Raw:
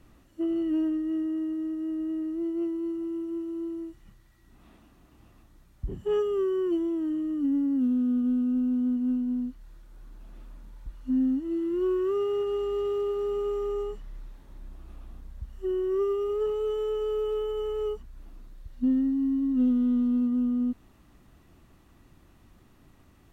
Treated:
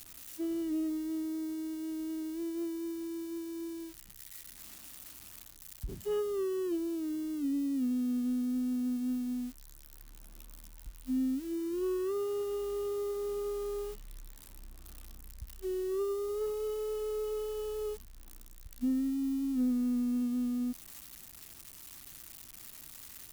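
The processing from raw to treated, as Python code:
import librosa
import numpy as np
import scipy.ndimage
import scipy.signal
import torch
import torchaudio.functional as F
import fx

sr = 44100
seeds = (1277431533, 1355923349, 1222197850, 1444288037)

y = x + 0.5 * 10.0 ** (-30.0 / 20.0) * np.diff(np.sign(x), prepend=np.sign(x[:1]))
y = y * librosa.db_to_amplitude(-6.5)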